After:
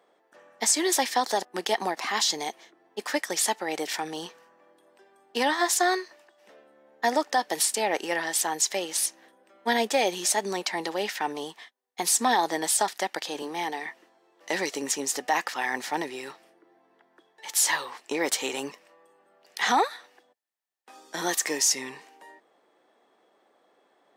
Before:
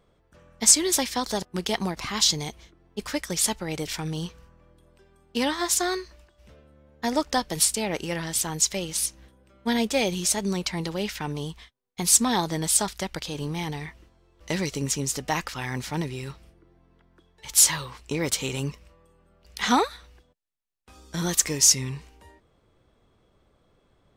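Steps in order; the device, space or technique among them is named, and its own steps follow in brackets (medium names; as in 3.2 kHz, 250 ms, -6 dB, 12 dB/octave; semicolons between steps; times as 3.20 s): 13.42–13.86 s: Chebyshev high-pass 170 Hz, order 4; laptop speaker (high-pass 280 Hz 24 dB/octave; peaking EQ 780 Hz +8.5 dB 0.58 oct; peaking EQ 1.8 kHz +8.5 dB 0.23 oct; peak limiter -13 dBFS, peak gain reduction 7.5 dB)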